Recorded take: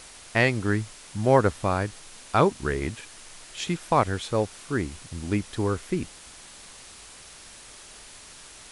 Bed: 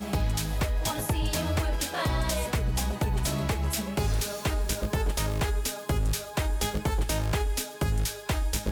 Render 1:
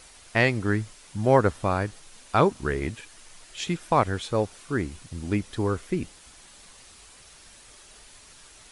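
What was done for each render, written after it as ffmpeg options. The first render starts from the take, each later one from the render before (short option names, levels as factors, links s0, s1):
-af "afftdn=nr=6:nf=-47"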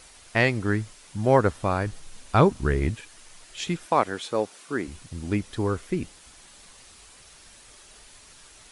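-filter_complex "[0:a]asettb=1/sr,asplit=3[s0][s1][s2];[s0]atrim=end=1.864[s3];[s1]atrim=start=1.86:end=2.97,asetpts=PTS-STARTPTS,afade=t=in:d=0.004:c=qsin,afade=t=out:st=1.106:d=0.004:c=qsin,lowshelf=f=170:g=10[s4];[s2]atrim=start=2.966[s5];[s3][s4]acrossfade=d=0.004:c1=hsin:c2=qsin[s6];[s6][s5]acrossfade=d=0.004:c1=qsin:c2=hsin,asettb=1/sr,asplit=3[s7][s8][s9];[s7]atrim=end=3.864[s10];[s8]atrim=start=3.86:end=4.88,asetpts=PTS-STARTPTS,afade=t=in:d=0.004:c=qsin,afade=t=out:st=1.016:d=0.004:c=qsin,highpass=230[s11];[s9]atrim=start=4.876[s12];[s10][s11]acrossfade=d=0.004:c1=hsin:c2=qsin[s13];[s13][s12]acrossfade=d=0.004:c1=qsin:c2=hsin"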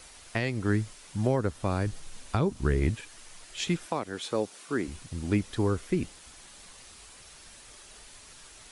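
-filter_complex "[0:a]alimiter=limit=0.237:level=0:latency=1:release=303,acrossover=split=430|3000[s0][s1][s2];[s1]acompressor=threshold=0.0224:ratio=3[s3];[s0][s3][s2]amix=inputs=3:normalize=0"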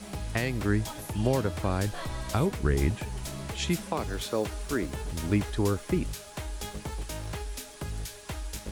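-filter_complex "[1:a]volume=0.355[s0];[0:a][s0]amix=inputs=2:normalize=0"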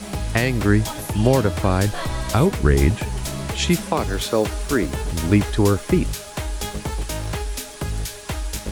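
-af "volume=2.99,alimiter=limit=0.708:level=0:latency=1"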